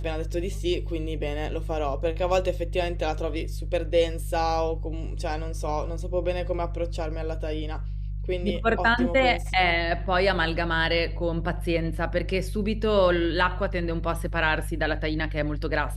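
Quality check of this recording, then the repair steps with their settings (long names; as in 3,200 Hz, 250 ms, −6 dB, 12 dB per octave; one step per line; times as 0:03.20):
mains hum 50 Hz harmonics 3 −31 dBFS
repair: hum removal 50 Hz, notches 3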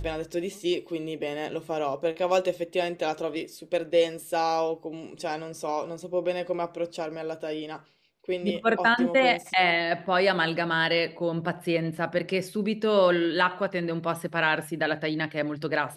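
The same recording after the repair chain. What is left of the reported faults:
none of them is left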